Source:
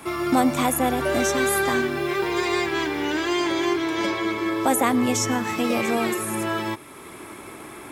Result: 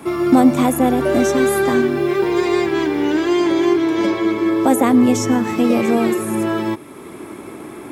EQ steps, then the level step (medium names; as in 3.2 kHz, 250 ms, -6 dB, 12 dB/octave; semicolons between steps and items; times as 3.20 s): peaking EQ 260 Hz +10.5 dB 2.8 oct; -1.0 dB